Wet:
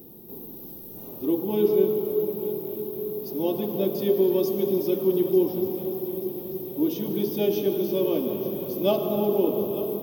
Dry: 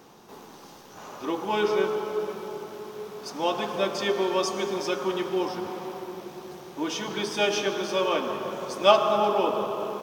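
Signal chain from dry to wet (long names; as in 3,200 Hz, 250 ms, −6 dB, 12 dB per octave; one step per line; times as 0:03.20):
drawn EQ curve 360 Hz 0 dB, 1,400 Hz −29 dB, 3,700 Hz −15 dB, 8,400 Hz −22 dB, 13,000 Hz +15 dB
on a send: echo machine with several playback heads 297 ms, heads first and third, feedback 70%, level −17 dB
on the sum: level +7 dB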